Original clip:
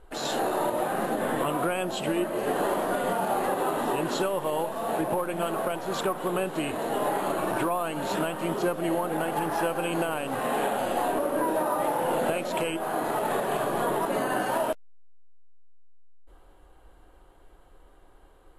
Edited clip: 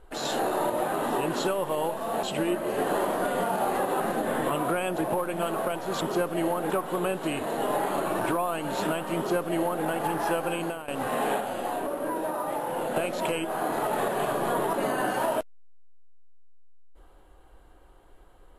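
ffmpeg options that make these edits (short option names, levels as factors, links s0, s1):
-filter_complex "[0:a]asplit=10[s0][s1][s2][s3][s4][s5][s6][s7][s8][s9];[s0]atrim=end=0.942[s10];[s1]atrim=start=3.688:end=4.982[s11];[s2]atrim=start=1.918:end=3.692[s12];[s3]atrim=start=0.938:end=1.922[s13];[s4]atrim=start=4.978:end=6.022[s14];[s5]atrim=start=8.488:end=9.172[s15];[s6]atrim=start=6.018:end=10.2,asetpts=PTS-STARTPTS,afade=t=out:st=3.802:d=0.38:silence=0.199526[s16];[s7]atrim=start=10.2:end=10.722,asetpts=PTS-STARTPTS,afade=t=in:d=0.004:c=hsin:silence=0.199526[s17];[s8]atrim=start=10.718:end=12.282,asetpts=PTS-STARTPTS,volume=0.631[s18];[s9]atrim=start=12.278[s19];[s10][s11]acrossfade=d=0.004:c1=hsin:c2=hsin[s20];[s20][s12]acrossfade=d=0.004:c1=hsin:c2=hsin[s21];[s21][s13]acrossfade=d=0.004:c1=hsin:c2=hsin[s22];[s22][s14]acrossfade=d=0.004:c1=hsin:c2=hsin[s23];[s23][s15]acrossfade=d=0.004:c1=hsin:c2=hsin[s24];[s16][s17]concat=n=2:v=0:a=1[s25];[s24][s25]acrossfade=d=0.004:c1=hsin:c2=hsin[s26];[s26][s18]acrossfade=d=0.004:c1=hsin:c2=hsin[s27];[s27][s19]acrossfade=d=0.004:c1=hsin:c2=hsin"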